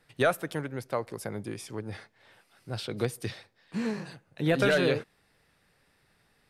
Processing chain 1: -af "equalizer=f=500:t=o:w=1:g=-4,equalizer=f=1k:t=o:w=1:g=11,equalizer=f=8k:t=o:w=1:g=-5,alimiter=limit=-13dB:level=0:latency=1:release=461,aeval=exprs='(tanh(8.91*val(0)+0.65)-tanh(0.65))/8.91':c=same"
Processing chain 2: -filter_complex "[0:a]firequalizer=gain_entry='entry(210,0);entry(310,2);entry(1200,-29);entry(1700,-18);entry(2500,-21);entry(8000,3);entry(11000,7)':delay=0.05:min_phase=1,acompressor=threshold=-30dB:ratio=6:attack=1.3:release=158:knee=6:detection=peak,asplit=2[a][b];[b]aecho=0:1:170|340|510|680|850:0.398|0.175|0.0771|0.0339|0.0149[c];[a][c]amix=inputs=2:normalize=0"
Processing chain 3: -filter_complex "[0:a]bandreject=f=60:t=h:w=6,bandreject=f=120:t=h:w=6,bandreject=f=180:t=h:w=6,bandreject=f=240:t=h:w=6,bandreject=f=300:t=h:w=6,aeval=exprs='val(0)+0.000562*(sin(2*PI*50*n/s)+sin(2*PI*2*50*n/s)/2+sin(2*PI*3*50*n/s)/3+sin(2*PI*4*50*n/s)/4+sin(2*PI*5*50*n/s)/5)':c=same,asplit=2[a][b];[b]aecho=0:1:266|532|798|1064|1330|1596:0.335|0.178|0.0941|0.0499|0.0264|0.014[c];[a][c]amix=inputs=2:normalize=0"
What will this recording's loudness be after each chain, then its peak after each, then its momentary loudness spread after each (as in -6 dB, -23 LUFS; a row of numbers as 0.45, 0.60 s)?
-35.5, -38.5, -31.0 LUFS; -16.0, -23.5, -13.0 dBFS; 14, 15, 21 LU